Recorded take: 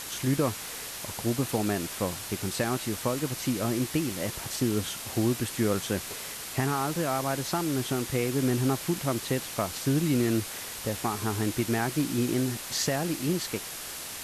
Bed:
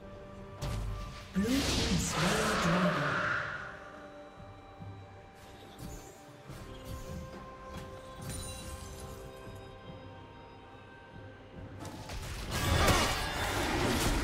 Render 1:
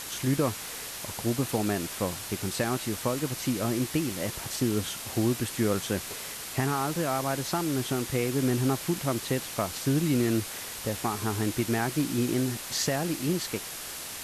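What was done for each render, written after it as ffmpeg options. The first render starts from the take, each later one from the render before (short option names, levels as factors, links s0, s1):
-af anull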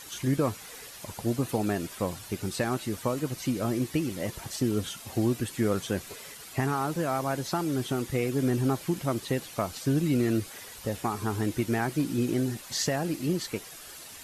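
-af "afftdn=nr=10:nf=-39"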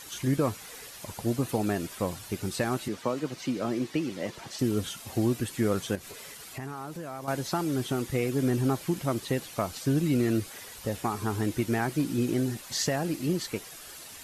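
-filter_complex "[0:a]asettb=1/sr,asplit=3[s0][s1][s2];[s0]atrim=end=2.884[s3];[s1]atrim=start=2.88:end=4.59,asetpts=PTS-STARTPTS,afade=t=in:d=0.004:c=qsin,afade=t=out:st=1.706:d=0.004:c=qsin,acrossover=split=160 6600:gain=0.224 1 0.224[s4][s5][s6];[s4][s5][s6]amix=inputs=3:normalize=0[s7];[s2]atrim=start=4.586[s8];[s3][s7]acrossfade=d=0.004:c1=hsin:c2=qsin[s9];[s9][s8]acrossfade=d=0.004:c1=qsin:c2=hsin,asettb=1/sr,asplit=3[s10][s11][s12];[s10]atrim=end=5.954[s13];[s11]atrim=start=5.95:end=7.28,asetpts=PTS-STARTPTS,afade=t=in:d=0.004:c=qsin,afade=t=out:st=1.326:d=0.004:c=qsin,acompressor=threshold=0.0112:ratio=2.5:attack=3.2:release=140:knee=1:detection=peak[s14];[s12]atrim=start=7.276[s15];[s13][s14]acrossfade=d=0.004:c1=hsin:c2=qsin[s16];[s16][s15]acrossfade=d=0.004:c1=qsin:c2=hsin"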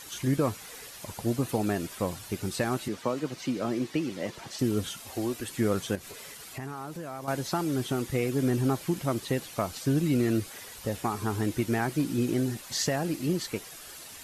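-filter_complex "[0:a]asettb=1/sr,asplit=3[s0][s1][s2];[s0]atrim=end=5.064[s3];[s1]atrim=start=5.06:end=5.47,asetpts=PTS-STARTPTS,afade=t=in:d=0.004:c=qsin,afade=t=out:st=0.406:d=0.004:c=qsin,equalizer=f=150:t=o:w=1.2:g=-15[s4];[s2]atrim=start=5.466[s5];[s3][s4]acrossfade=d=0.004:c1=hsin:c2=qsin[s6];[s6][s5]acrossfade=d=0.004:c1=qsin:c2=hsin"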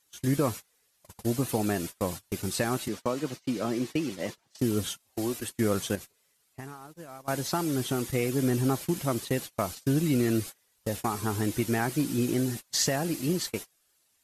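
-af "agate=range=0.0355:threshold=0.0158:ratio=16:detection=peak,highshelf=f=4800:g=6"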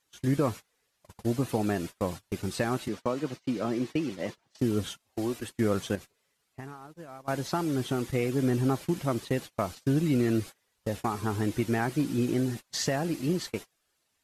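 -af "lowpass=f=3400:p=1"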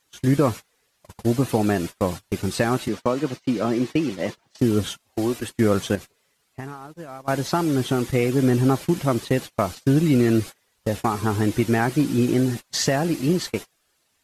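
-af "volume=2.37"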